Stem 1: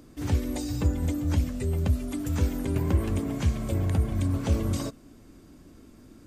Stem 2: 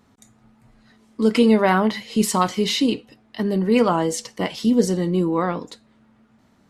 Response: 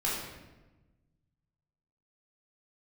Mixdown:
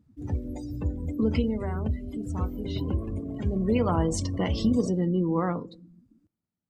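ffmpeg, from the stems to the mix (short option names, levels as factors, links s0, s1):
-filter_complex "[0:a]volume=0.596,asplit=2[s0][s1];[s1]volume=0.15[s2];[1:a]equalizer=f=110:t=o:w=1.6:g=9,acompressor=threshold=0.0631:ratio=2.5,volume=3.35,afade=t=out:st=1.18:d=0.53:silence=0.251189,afade=t=in:st=3.39:d=0.31:silence=0.251189,afade=t=out:st=5.51:d=0.33:silence=0.223872,asplit=2[s3][s4];[s4]volume=0.0668[s5];[2:a]atrim=start_sample=2205[s6];[s5][s6]afir=irnorm=-1:irlink=0[s7];[s2]aecho=0:1:180:1[s8];[s0][s3][s7][s8]amix=inputs=4:normalize=0,afftdn=nr=23:nf=-39"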